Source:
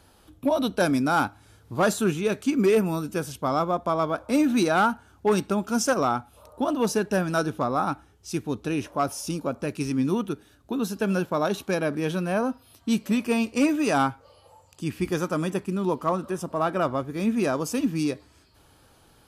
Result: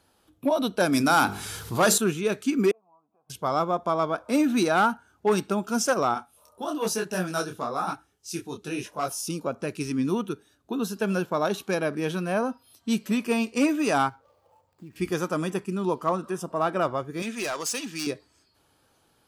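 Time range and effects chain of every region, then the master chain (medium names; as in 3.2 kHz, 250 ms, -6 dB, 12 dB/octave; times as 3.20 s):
0.92–1.98 s: treble shelf 2.6 kHz +8 dB + hum notches 50/100/150/200/250/300/350/400/450/500 Hz + level flattener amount 50%
2.71–3.30 s: compression 12:1, threshold -34 dBFS + cascade formant filter a
6.14–9.28 s: treble shelf 3.3 kHz +7.5 dB + detune thickener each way 37 cents
14.09–14.96 s: median filter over 15 samples + compression, threshold -37 dBFS
17.22–18.07 s: low-pass 7.1 kHz + tilt EQ +4 dB/octave + overload inside the chain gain 24.5 dB
whole clip: spectral noise reduction 7 dB; bass shelf 87 Hz -11.5 dB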